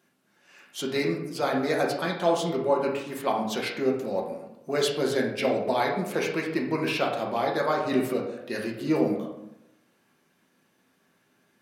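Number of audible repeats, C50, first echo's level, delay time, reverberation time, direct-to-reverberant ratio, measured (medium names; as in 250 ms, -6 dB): no echo, 5.5 dB, no echo, no echo, 0.90 s, -1.5 dB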